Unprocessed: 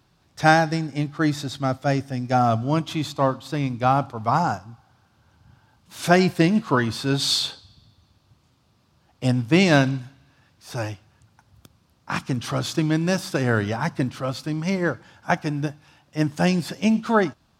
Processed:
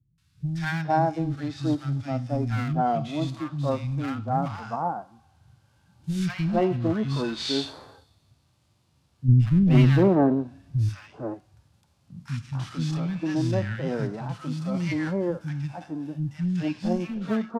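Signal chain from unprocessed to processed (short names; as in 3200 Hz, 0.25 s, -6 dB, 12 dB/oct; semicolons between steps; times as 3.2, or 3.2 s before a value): CVSD 64 kbps; 9.28–10.89 low shelf 480 Hz +11.5 dB; treble ducked by the level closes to 3000 Hz, closed at -16 dBFS; harmonic-percussive split percussive -16 dB; one-sided clip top -20.5 dBFS, bottom -4.5 dBFS; three bands offset in time lows, highs, mids 0.18/0.45 s, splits 210/1300 Hz; 14.74–15.31 fast leveller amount 70%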